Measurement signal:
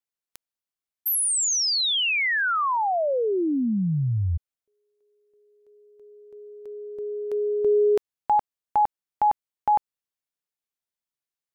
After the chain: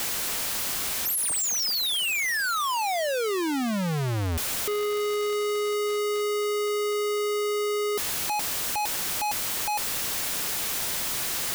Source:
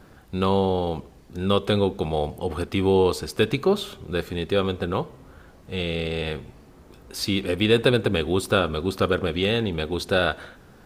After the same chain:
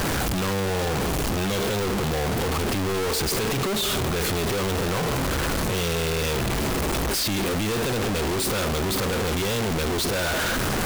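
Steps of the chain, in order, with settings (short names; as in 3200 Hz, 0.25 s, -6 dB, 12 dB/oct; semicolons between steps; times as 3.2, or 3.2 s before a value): infinite clipping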